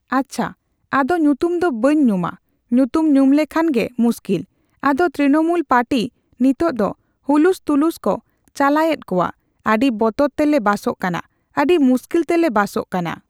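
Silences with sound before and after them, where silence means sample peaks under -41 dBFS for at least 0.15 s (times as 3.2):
0.53–0.92
2.36–2.71
4.44–4.83
6.09–6.4
6.93–7.28
8.19–8.48
9.31–9.65
11.2–11.55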